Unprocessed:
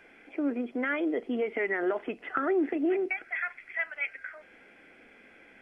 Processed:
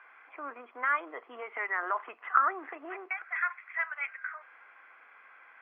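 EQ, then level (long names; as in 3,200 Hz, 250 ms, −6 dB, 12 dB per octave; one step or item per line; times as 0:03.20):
high-pass with resonance 1,100 Hz, resonance Q 6.4
Bessel low-pass filter 1,800 Hz, order 2
high-frequency loss of the air 68 metres
0.0 dB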